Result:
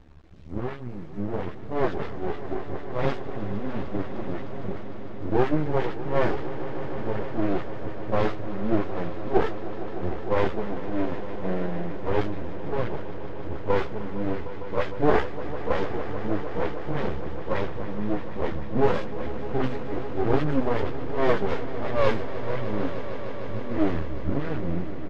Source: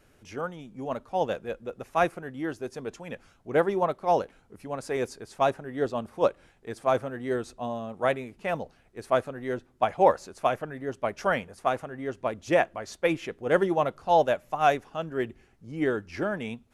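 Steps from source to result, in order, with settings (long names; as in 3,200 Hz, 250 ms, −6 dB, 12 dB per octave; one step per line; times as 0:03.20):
running median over 41 samples
low-pass that shuts in the quiet parts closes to 2,200 Hz, open at −22 dBFS
parametric band 95 Hz +14.5 dB 0.29 octaves
in parallel at −1.5 dB: downward compressor 16 to 1, threshold −34 dBFS, peak gain reduction 17.5 dB
on the sum: pitch shifter −4.5 semitones
all-pass dispersion highs, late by 51 ms, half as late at 800 Hz
bit-depth reduction 10 bits, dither none
time stretch by phase vocoder 1.5×
half-wave rectification
high-frequency loss of the air 120 metres
echo that builds up and dies away 152 ms, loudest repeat 5, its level −15.5 dB
level +7.5 dB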